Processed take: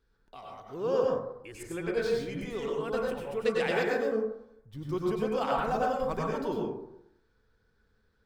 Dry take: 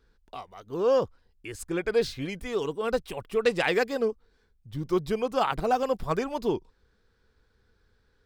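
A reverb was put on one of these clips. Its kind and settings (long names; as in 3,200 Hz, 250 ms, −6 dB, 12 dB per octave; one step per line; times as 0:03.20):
dense smooth reverb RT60 0.77 s, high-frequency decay 0.35×, pre-delay 85 ms, DRR −3 dB
level −8 dB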